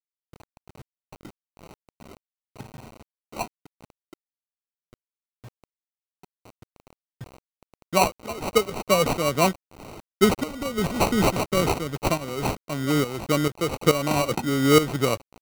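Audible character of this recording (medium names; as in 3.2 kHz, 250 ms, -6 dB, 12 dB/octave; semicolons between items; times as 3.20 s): phasing stages 2, 0.16 Hz, lowest notch 760–2500 Hz; aliases and images of a low sample rate 1.7 kHz, jitter 0%; tremolo saw up 2.3 Hz, depth 75%; a quantiser's noise floor 8-bit, dither none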